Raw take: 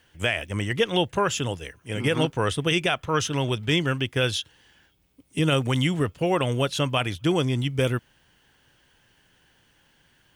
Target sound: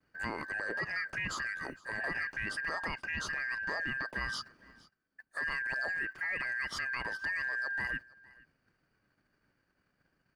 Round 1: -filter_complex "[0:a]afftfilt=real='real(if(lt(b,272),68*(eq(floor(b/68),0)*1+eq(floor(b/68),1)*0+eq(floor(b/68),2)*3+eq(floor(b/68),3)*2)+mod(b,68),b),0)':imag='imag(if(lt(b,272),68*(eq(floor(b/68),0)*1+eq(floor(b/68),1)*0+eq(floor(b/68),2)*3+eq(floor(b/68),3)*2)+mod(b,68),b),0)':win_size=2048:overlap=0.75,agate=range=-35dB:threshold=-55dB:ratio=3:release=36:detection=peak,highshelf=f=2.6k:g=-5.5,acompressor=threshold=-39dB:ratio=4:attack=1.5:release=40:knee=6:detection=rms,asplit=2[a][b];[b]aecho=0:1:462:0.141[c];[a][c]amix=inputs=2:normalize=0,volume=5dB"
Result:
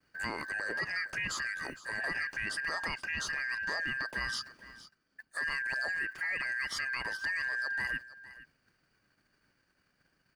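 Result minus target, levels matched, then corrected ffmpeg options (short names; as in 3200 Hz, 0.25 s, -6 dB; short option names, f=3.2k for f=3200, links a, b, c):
echo-to-direct +6.5 dB; 4000 Hz band +3.0 dB
-filter_complex "[0:a]afftfilt=real='real(if(lt(b,272),68*(eq(floor(b/68),0)*1+eq(floor(b/68),1)*0+eq(floor(b/68),2)*3+eq(floor(b/68),3)*2)+mod(b,68),b),0)':imag='imag(if(lt(b,272),68*(eq(floor(b/68),0)*1+eq(floor(b/68),1)*0+eq(floor(b/68),2)*3+eq(floor(b/68),3)*2)+mod(b,68),b),0)':win_size=2048:overlap=0.75,agate=range=-35dB:threshold=-55dB:ratio=3:release=36:detection=peak,highshelf=f=2.6k:g=-16,acompressor=threshold=-39dB:ratio=4:attack=1.5:release=40:knee=6:detection=rms,asplit=2[a][b];[b]aecho=0:1:462:0.0668[c];[a][c]amix=inputs=2:normalize=0,volume=5dB"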